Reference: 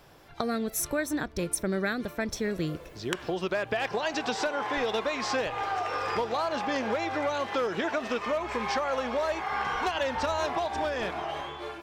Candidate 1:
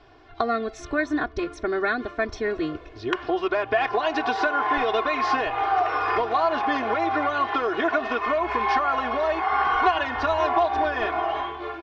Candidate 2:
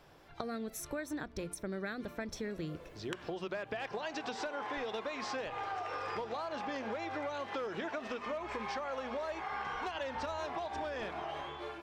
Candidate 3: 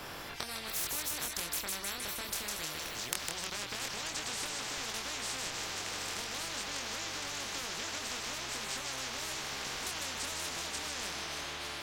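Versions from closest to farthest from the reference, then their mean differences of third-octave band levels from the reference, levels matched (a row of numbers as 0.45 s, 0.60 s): 2, 1, 3; 2.0 dB, 6.5 dB, 11.5 dB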